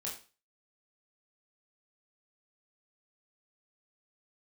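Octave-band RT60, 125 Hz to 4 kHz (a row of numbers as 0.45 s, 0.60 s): 0.35 s, 0.35 s, 0.35 s, 0.35 s, 0.35 s, 0.35 s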